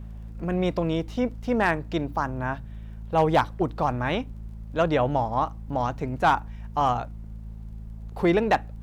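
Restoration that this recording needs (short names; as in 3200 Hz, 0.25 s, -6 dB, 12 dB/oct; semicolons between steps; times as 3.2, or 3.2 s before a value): clip repair -12.5 dBFS; de-click; de-hum 54.5 Hz, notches 4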